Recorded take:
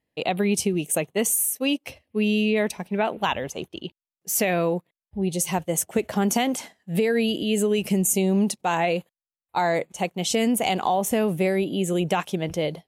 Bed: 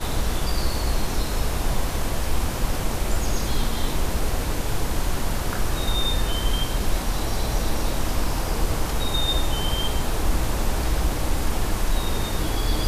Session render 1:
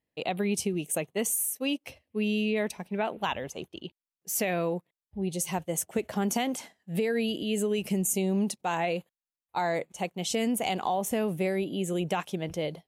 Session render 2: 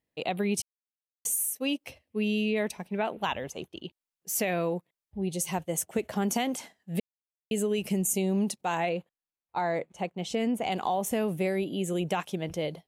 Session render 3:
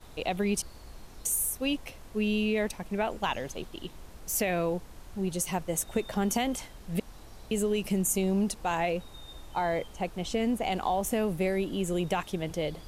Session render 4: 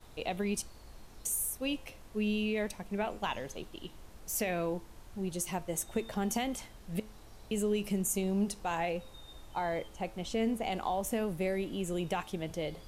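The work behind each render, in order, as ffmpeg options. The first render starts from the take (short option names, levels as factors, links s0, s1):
-af "volume=0.501"
-filter_complex "[0:a]asettb=1/sr,asplit=3[s0][s1][s2];[s0]atrim=end=8.894[s3];[s1]atrim=start=8.89:end=10.72,asetpts=PTS-STARTPTS,afade=t=in:d=0.004:c=qsin,afade=t=out:st=1.826:d=0.004:c=qsin,lowpass=f=2300:p=1[s4];[s2]atrim=start=10.716[s5];[s3][s4]acrossfade=d=0.004:c1=hsin:c2=qsin[s6];[s6][s5]acrossfade=d=0.004:c1=qsin:c2=hsin,asplit=5[s7][s8][s9][s10][s11];[s7]atrim=end=0.62,asetpts=PTS-STARTPTS,afade=t=out:st=0.616:d=0.004:c=hsin[s12];[s8]atrim=start=0.62:end=1.25,asetpts=PTS-STARTPTS,volume=0[s13];[s9]atrim=start=1.25:end=7,asetpts=PTS-STARTPTS,afade=t=in:d=0.004:c=hsin,afade=t=out:st=5.746:d=0.004:c=hsin[s14];[s10]atrim=start=7:end=7.51,asetpts=PTS-STARTPTS,volume=0[s15];[s11]atrim=start=7.51,asetpts=PTS-STARTPTS,afade=t=in:d=0.004:c=hsin[s16];[s12][s13][s14][s15][s16]concat=n=5:v=0:a=1"
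-filter_complex "[1:a]volume=0.0631[s0];[0:a][s0]amix=inputs=2:normalize=0"
-af "flanger=delay=8.6:depth=1.3:regen=87:speed=0.18:shape=triangular"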